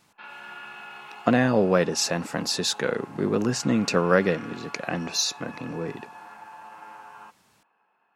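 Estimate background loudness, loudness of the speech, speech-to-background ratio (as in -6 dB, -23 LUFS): -43.0 LUFS, -25.0 LUFS, 18.0 dB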